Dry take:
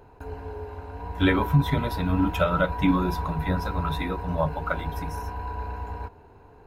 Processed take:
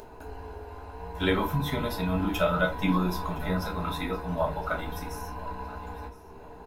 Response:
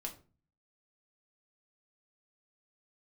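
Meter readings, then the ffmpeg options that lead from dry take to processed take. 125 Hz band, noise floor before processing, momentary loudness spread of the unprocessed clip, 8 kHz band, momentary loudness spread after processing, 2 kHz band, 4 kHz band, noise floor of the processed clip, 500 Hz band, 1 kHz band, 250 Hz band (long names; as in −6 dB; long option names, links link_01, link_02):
−6.0 dB, −51 dBFS, 15 LU, can't be measured, 17 LU, −1.5 dB, 0.0 dB, −47 dBFS, −1.0 dB, −3.0 dB, −4.0 dB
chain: -filter_complex "[0:a]bass=frequency=250:gain=-4,treble=frequency=4000:gain=6,acompressor=mode=upward:threshold=-37dB:ratio=2.5,aecho=1:1:1014|2028|3042:0.106|0.0434|0.0178[link_01];[1:a]atrim=start_sample=2205,atrim=end_sample=3969[link_02];[link_01][link_02]afir=irnorm=-1:irlink=0"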